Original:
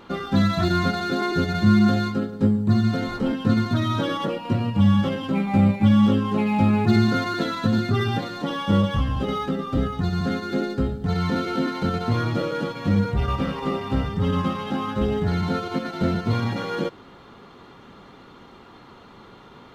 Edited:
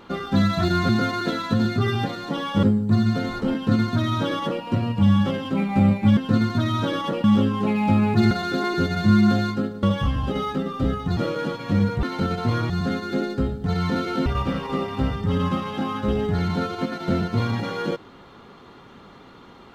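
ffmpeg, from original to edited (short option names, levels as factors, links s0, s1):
-filter_complex "[0:a]asplit=11[s0][s1][s2][s3][s4][s5][s6][s7][s8][s9][s10];[s0]atrim=end=0.892[s11];[s1]atrim=start=7.018:end=8.762[s12];[s2]atrim=start=2.408:end=5.952[s13];[s3]atrim=start=3.328:end=4.402[s14];[s4]atrim=start=5.948:end=7.022[s15];[s5]atrim=start=0.888:end=2.412[s16];[s6]atrim=start=8.758:end=10.102[s17];[s7]atrim=start=12.328:end=13.192[s18];[s8]atrim=start=11.658:end=12.332[s19];[s9]atrim=start=10.098:end=11.662[s20];[s10]atrim=start=13.188[s21];[s11][s12]acrossfade=d=0.004:c1=hsin:c2=hsin[s22];[s22][s13]acrossfade=d=0.004:c1=hsin:c2=hsin[s23];[s23][s14]acrossfade=d=0.004:c1=hsin:c2=hsin[s24];[s24][s15]acrossfade=d=0.004:c1=hsin:c2=hsin[s25];[s25][s16]acrossfade=d=0.004:c1=hsin:c2=hsin[s26];[s26][s17]acrossfade=d=0.004:c1=hsin:c2=hsin[s27];[s27][s18]acrossfade=d=0.004:c1=hsin:c2=hsin[s28];[s28][s19]acrossfade=d=0.004:c1=hsin:c2=hsin[s29];[s29][s20]acrossfade=d=0.004:c1=hsin:c2=hsin[s30];[s30][s21]acrossfade=d=0.004:c1=hsin:c2=hsin"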